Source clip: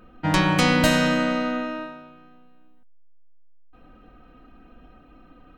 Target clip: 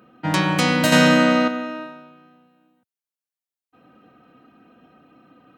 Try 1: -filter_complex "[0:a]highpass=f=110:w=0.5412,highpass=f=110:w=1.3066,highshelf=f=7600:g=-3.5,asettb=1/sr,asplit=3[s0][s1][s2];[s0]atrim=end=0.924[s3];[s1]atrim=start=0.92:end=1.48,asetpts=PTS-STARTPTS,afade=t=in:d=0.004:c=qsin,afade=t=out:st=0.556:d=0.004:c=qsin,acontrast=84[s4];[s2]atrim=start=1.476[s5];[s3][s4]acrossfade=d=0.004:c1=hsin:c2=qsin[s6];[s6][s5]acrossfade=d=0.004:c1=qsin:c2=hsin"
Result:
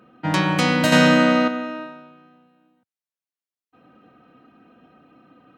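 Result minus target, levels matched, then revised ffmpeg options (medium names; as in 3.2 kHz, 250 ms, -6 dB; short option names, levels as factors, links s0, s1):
8 kHz band -3.0 dB
-filter_complex "[0:a]highpass=f=110:w=0.5412,highpass=f=110:w=1.3066,highshelf=f=7600:g=3.5,asettb=1/sr,asplit=3[s0][s1][s2];[s0]atrim=end=0.924[s3];[s1]atrim=start=0.92:end=1.48,asetpts=PTS-STARTPTS,afade=t=in:d=0.004:c=qsin,afade=t=out:st=0.556:d=0.004:c=qsin,acontrast=84[s4];[s2]atrim=start=1.476[s5];[s3][s4]acrossfade=d=0.004:c1=hsin:c2=qsin[s6];[s6][s5]acrossfade=d=0.004:c1=qsin:c2=hsin"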